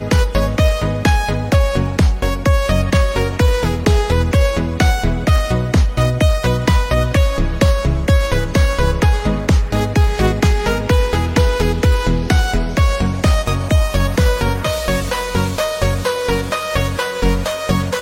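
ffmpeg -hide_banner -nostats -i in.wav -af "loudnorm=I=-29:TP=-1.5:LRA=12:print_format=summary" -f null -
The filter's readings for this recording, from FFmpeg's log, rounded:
Input Integrated:    -16.7 LUFS
Input True Peak:      -2.3 dBTP
Input LRA:             2.6 LU
Input Threshold:     -26.7 LUFS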